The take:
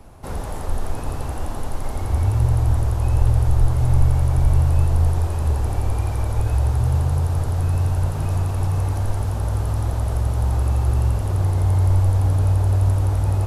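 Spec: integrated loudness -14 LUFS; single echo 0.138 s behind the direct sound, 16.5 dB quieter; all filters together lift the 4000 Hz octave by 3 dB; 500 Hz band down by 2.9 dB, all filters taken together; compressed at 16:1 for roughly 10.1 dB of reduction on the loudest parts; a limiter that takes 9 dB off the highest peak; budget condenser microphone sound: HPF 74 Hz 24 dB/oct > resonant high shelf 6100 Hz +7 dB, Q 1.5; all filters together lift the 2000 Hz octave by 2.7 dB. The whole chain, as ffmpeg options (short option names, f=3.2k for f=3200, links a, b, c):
-af "equalizer=f=500:t=o:g=-4,equalizer=f=2k:t=o:g=3.5,equalizer=f=4k:t=o:g=4.5,acompressor=threshold=-19dB:ratio=16,alimiter=limit=-22dB:level=0:latency=1,highpass=f=74:w=0.5412,highpass=f=74:w=1.3066,highshelf=f=6.1k:t=q:w=1.5:g=7,aecho=1:1:138:0.15,volume=17.5dB"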